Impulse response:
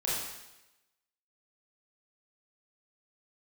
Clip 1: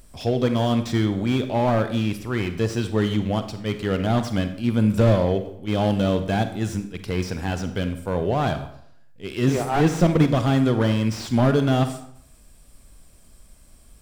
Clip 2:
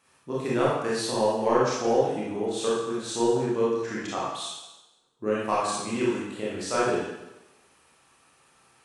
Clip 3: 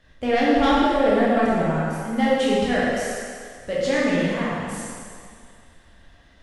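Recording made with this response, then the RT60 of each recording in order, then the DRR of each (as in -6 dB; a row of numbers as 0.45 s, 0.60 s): 2; 0.70 s, 0.95 s, 2.1 s; 9.0 dB, -7.5 dB, -7.0 dB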